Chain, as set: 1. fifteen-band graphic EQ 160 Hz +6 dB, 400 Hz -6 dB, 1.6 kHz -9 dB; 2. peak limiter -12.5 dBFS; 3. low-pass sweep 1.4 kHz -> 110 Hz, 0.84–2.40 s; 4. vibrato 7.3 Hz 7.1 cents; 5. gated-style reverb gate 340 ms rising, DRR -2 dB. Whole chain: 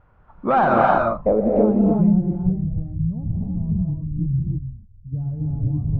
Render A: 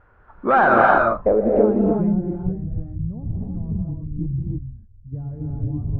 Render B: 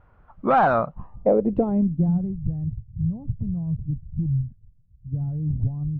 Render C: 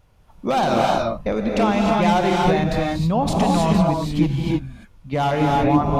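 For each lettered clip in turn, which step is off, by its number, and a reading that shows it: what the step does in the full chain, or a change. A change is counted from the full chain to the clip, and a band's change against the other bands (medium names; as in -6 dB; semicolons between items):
1, 2 kHz band +8.0 dB; 5, momentary loudness spread change -1 LU; 3, momentary loudness spread change -5 LU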